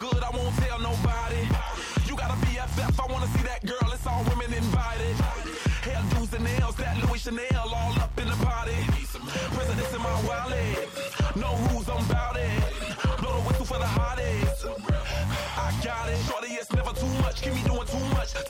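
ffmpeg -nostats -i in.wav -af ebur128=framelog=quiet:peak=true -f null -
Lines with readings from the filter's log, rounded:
Integrated loudness:
  I:         -28.1 LUFS
  Threshold: -38.1 LUFS
Loudness range:
  LRA:         1.0 LU
  Threshold: -48.1 LUFS
  LRA low:   -28.6 LUFS
  LRA high:  -27.6 LUFS
True peak:
  Peak:      -13.4 dBFS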